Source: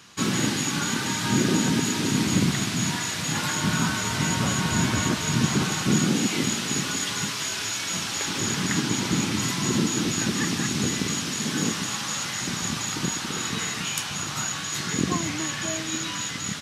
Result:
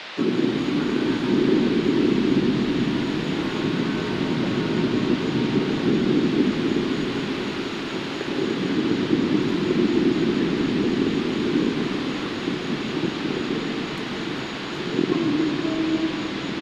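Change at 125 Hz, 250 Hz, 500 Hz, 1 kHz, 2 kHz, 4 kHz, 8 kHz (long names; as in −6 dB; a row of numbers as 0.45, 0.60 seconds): −1.5 dB, +5.5 dB, +9.5 dB, −1.5 dB, −2.0 dB, −3.5 dB, below −20 dB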